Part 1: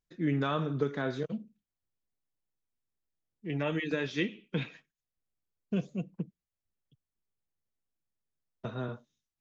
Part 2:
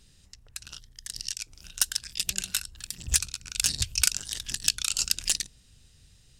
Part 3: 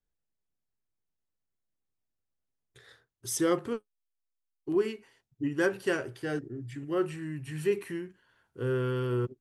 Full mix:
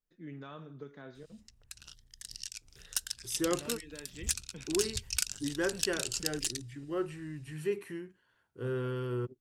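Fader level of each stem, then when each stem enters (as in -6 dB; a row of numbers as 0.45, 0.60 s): -16.0, -8.5, -5.0 dB; 0.00, 1.15, 0.00 s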